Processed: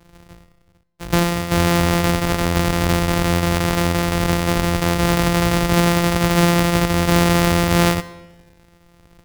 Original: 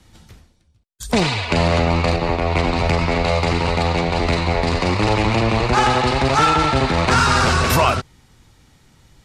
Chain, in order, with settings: sample sorter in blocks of 256 samples; digital reverb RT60 1.1 s, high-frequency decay 0.9×, pre-delay 35 ms, DRR 17.5 dB

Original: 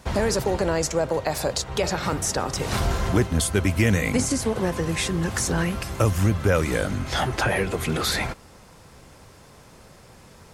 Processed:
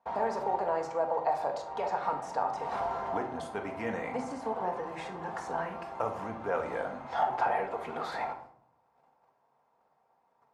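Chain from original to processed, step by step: gate -45 dBFS, range -15 dB; band-pass 840 Hz, Q 3.8; shoebox room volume 900 m³, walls furnished, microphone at 1.7 m; gain +1.5 dB

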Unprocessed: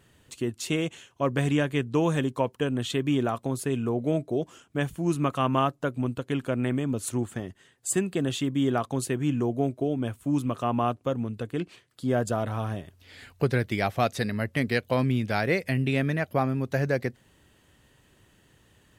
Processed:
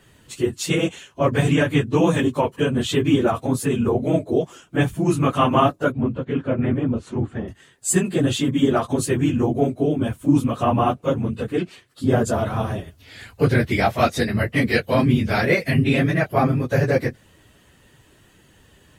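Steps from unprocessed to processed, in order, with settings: phase scrambler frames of 50 ms; 5.92–7.48 tape spacing loss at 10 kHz 29 dB; gain +7 dB

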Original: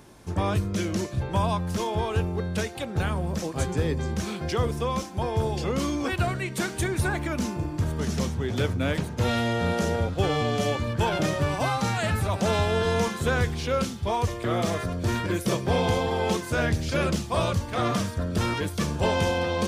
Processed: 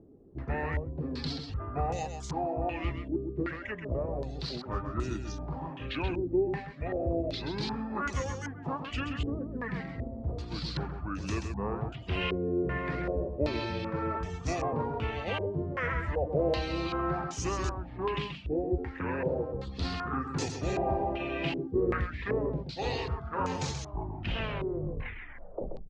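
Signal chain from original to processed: tape stop at the end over 1.77 s; reverb removal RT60 0.55 s; varispeed -24%; echo 0.131 s -7 dB; stepped low-pass 2.6 Hz 390–6400 Hz; gain -8 dB

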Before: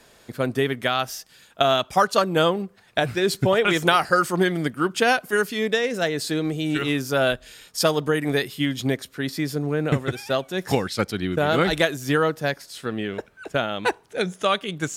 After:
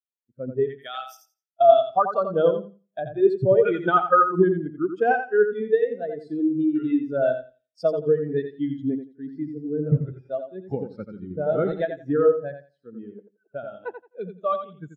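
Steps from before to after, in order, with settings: 0.67–1.17 RIAA curve recording; feedback echo 86 ms, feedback 48%, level -3.5 dB; spectral expander 2.5:1

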